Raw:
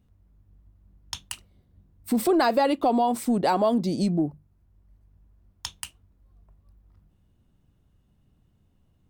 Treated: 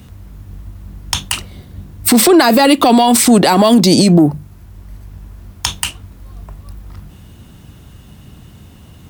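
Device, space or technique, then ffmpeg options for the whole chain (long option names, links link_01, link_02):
mastering chain: -filter_complex "[0:a]highpass=47,equalizer=frequency=560:width_type=o:width=0.77:gain=-1.5,acrossover=split=320|1600|7700[link_01][link_02][link_03][link_04];[link_01]acompressor=threshold=-33dB:ratio=4[link_05];[link_02]acompressor=threshold=-34dB:ratio=4[link_06];[link_03]acompressor=threshold=-42dB:ratio=4[link_07];[link_04]acompressor=threshold=-46dB:ratio=4[link_08];[link_05][link_06][link_07][link_08]amix=inputs=4:normalize=0,acompressor=threshold=-32dB:ratio=2,asoftclip=type=tanh:threshold=-22.5dB,tiltshelf=frequency=1200:gain=-3.5,asoftclip=type=hard:threshold=-23.5dB,alimiter=level_in=31dB:limit=-1dB:release=50:level=0:latency=1,volume=-1dB"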